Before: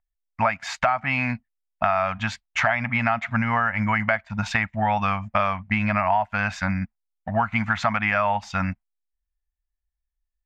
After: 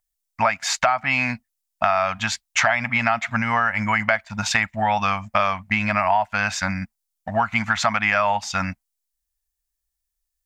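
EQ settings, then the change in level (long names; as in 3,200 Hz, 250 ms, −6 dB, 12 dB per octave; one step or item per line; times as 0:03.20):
bass and treble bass −5 dB, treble +13 dB
+2.0 dB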